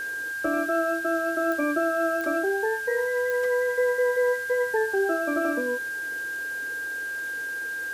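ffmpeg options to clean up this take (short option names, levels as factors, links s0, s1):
-af "adeclick=t=4,bandreject=f=1600:w=30,afwtdn=0.005"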